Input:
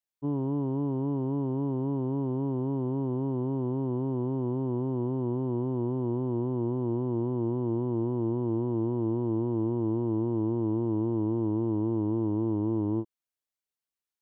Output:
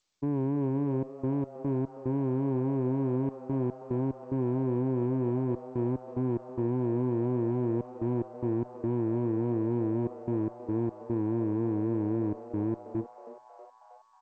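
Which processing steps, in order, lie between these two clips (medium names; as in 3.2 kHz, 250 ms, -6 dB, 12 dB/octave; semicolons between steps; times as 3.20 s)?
high-pass 83 Hz 12 dB/octave; reverb removal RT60 0.56 s; Bessel low-pass 1.1 kHz, order 8; peak limiter -29.5 dBFS, peak gain reduction 8 dB; trance gate "xxxxx.x.x.x" 73 bpm -24 dB; Chebyshev shaper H 6 -32 dB, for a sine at -29.5 dBFS; on a send: frequency-shifting echo 318 ms, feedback 64%, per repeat +130 Hz, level -17 dB; on the sum: trim +8 dB; G.722 64 kbps 16 kHz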